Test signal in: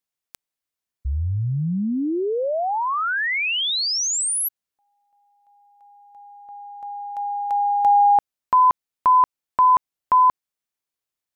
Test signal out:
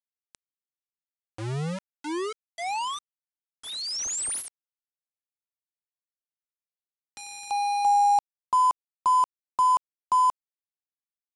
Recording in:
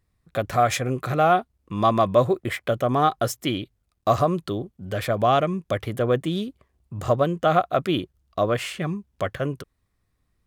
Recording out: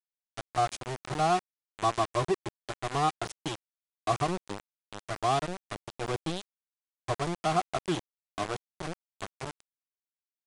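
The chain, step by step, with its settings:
phaser with its sweep stopped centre 360 Hz, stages 8
centre clipping without the shift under −23.5 dBFS
downsampling to 22,050 Hz
level −5 dB

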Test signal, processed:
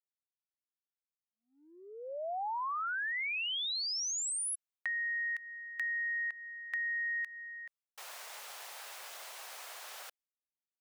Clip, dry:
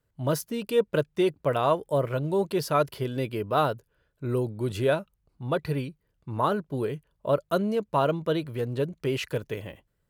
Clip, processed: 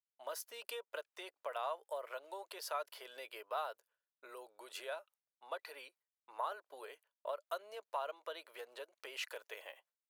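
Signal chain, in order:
downward compressor 6 to 1, threshold −29 dBFS
inverse Chebyshev high-pass filter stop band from 180 Hz, stop band 60 dB
downward expander −60 dBFS
level −5 dB

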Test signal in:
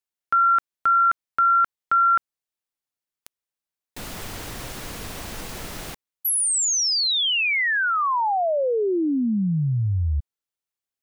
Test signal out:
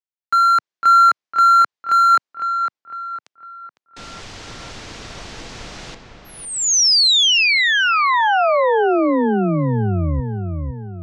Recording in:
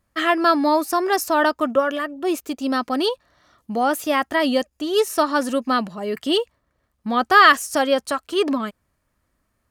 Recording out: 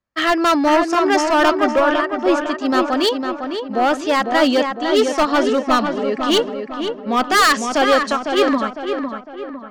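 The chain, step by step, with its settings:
low-pass filter 6,500 Hz 24 dB per octave
low-shelf EQ 140 Hz −9 dB
gain into a clipping stage and back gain 17 dB
on a send: feedback echo with a low-pass in the loop 505 ms, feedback 57%, low-pass 2,800 Hz, level −4.5 dB
on the sum: multiband upward and downward expander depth 40%
level +5.5 dB

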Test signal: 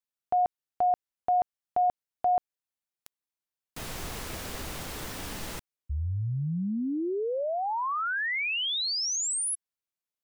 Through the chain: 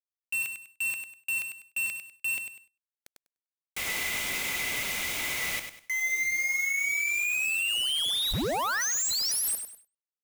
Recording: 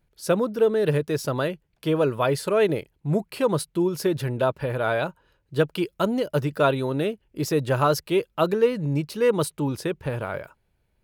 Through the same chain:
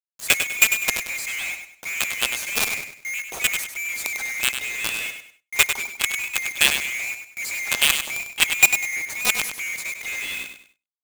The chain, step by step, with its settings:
neighbouring bands swapped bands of 2,000 Hz
log-companded quantiser 2 bits
on a send: repeating echo 99 ms, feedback 31%, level −8 dB
on the sum: noise gate with hold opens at −41 dBFS, hold 45 ms, range −17 dB
level −3.5 dB

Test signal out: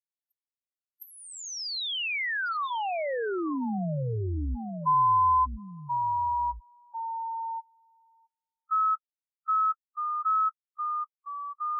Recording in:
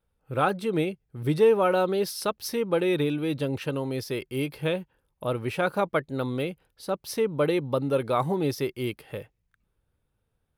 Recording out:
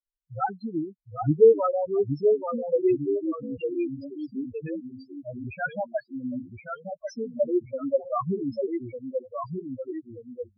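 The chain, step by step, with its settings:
spectral dynamics exaggerated over time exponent 3
delay with pitch and tempo change per echo 742 ms, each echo −1 semitone, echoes 2, each echo −6 dB
treble cut that deepens with the level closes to 2,300 Hz, closed at −26.5 dBFS
spectral peaks only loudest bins 4
level +6 dB

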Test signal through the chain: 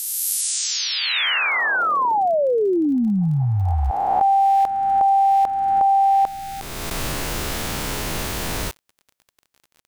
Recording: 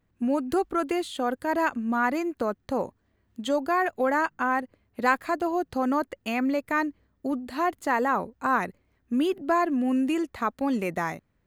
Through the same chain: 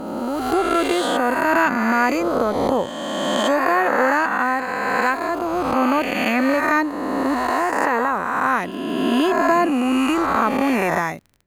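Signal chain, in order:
peak hold with a rise ahead of every peak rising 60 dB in 2.27 s
automatic gain control gain up to 12 dB
surface crackle 31 per second −31 dBFS
level −3.5 dB

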